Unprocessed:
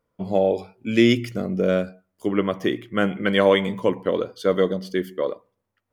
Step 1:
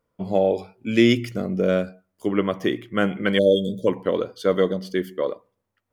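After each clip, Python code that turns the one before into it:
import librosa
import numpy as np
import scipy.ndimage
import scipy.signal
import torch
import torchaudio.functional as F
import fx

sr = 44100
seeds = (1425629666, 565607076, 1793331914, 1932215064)

y = fx.spec_erase(x, sr, start_s=3.38, length_s=0.49, low_hz=630.0, high_hz=3200.0)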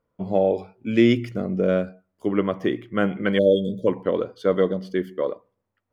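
y = fx.high_shelf(x, sr, hz=3600.0, db=-12.0)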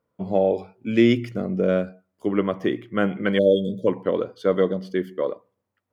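y = scipy.signal.sosfilt(scipy.signal.butter(2, 77.0, 'highpass', fs=sr, output='sos'), x)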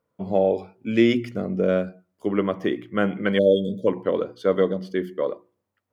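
y = fx.hum_notches(x, sr, base_hz=60, count=6)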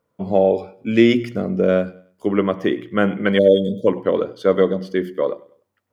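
y = fx.echo_feedback(x, sr, ms=99, feedback_pct=38, wet_db=-22)
y = F.gain(torch.from_numpy(y), 4.5).numpy()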